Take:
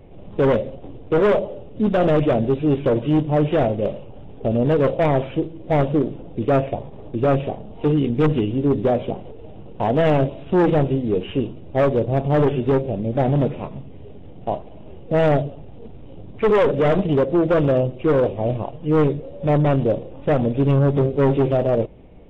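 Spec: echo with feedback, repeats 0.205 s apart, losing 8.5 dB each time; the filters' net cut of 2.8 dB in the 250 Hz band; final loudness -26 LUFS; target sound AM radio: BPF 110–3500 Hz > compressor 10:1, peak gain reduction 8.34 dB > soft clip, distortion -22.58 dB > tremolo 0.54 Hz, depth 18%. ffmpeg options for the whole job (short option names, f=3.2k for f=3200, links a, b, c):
-af "highpass=110,lowpass=3.5k,equalizer=f=250:t=o:g=-3.5,aecho=1:1:205|410|615|820:0.376|0.143|0.0543|0.0206,acompressor=threshold=-21dB:ratio=10,asoftclip=threshold=-16dB,tremolo=f=0.54:d=0.18,volume=2.5dB"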